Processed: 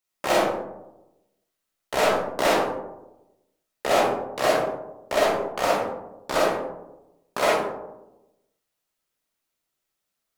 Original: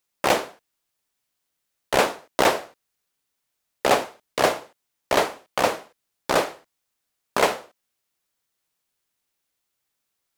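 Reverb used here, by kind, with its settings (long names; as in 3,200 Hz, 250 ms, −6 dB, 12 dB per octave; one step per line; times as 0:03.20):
comb and all-pass reverb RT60 0.98 s, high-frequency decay 0.3×, pre-delay 5 ms, DRR −6 dB
level −7.5 dB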